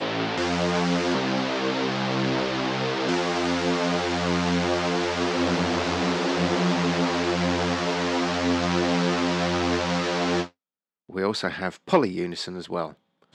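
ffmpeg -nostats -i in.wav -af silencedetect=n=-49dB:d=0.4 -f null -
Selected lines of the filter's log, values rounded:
silence_start: 10.50
silence_end: 11.09 | silence_duration: 0.59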